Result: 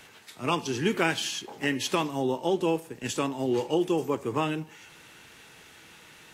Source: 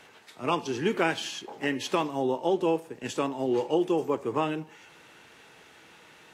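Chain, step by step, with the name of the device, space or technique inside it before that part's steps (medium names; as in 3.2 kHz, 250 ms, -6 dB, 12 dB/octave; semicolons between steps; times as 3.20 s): smiley-face EQ (bass shelf 93 Hz +6.5 dB; peaking EQ 610 Hz -5 dB 2.3 oct; treble shelf 8.2 kHz +7.5 dB); trim +3 dB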